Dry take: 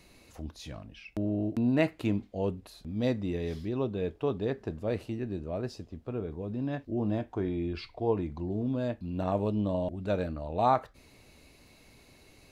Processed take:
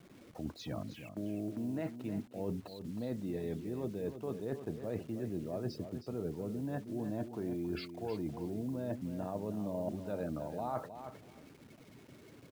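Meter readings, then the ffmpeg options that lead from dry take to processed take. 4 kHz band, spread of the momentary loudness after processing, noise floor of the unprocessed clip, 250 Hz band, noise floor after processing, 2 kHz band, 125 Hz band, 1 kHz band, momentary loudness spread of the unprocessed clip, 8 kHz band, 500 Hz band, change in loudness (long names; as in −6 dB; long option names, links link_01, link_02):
−6.5 dB, 12 LU, −59 dBFS, −6.5 dB, −57 dBFS, −10.5 dB, −7.5 dB, −12.0 dB, 11 LU, can't be measured, −7.5 dB, −7.5 dB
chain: -af "aemphasis=mode=reproduction:type=50kf,bandreject=frequency=1100:width=25,afftfilt=real='re*gte(hypot(re,im),0.00316)':imag='im*gte(hypot(re,im),0.00316)':win_size=1024:overlap=0.75,highpass=frequency=110:width=0.5412,highpass=frequency=110:width=1.3066,equalizer=frequency=2600:width_type=o:width=0.96:gain=-5.5,alimiter=limit=-21dB:level=0:latency=1:release=227,areverse,acompressor=threshold=-40dB:ratio=12,areverse,acrusher=bits=10:mix=0:aa=0.000001,aecho=1:1:315|630:0.316|0.0506,volume=5.5dB"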